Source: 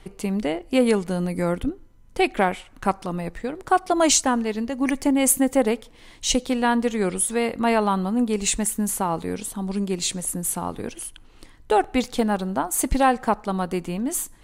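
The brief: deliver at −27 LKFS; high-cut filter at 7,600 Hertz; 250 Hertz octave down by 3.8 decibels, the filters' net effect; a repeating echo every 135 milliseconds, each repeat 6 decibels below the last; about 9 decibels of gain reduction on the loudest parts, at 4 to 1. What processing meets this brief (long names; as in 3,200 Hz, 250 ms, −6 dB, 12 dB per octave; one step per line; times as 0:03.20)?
low-pass filter 7,600 Hz
parametric band 250 Hz −4.5 dB
downward compressor 4 to 1, threshold −25 dBFS
repeating echo 135 ms, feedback 50%, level −6 dB
level +2 dB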